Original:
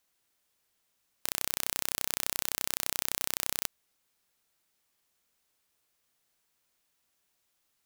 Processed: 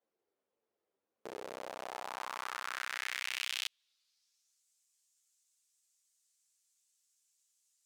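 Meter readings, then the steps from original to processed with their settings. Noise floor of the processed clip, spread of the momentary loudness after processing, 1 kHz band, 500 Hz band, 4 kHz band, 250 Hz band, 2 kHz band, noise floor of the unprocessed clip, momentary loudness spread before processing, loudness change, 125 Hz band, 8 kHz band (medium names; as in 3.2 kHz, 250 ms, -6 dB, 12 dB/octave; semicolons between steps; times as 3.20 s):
under -85 dBFS, 11 LU, +1.5 dB, 0.0 dB, -4.0 dB, -8.0 dB, +1.0 dB, -77 dBFS, 4 LU, -8.0 dB, under -15 dB, -14.5 dB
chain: band-pass sweep 440 Hz -> 7.3 kHz, 1.31–4.65 s; three-phase chorus; trim +10 dB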